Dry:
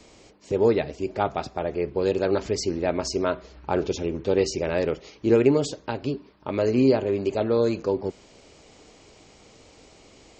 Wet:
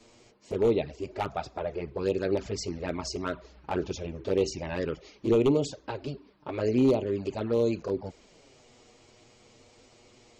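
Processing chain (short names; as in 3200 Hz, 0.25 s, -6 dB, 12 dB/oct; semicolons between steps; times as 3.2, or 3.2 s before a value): wavefolder -12.5 dBFS; envelope flanger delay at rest 9.2 ms, full sweep at -17.5 dBFS; gain -2.5 dB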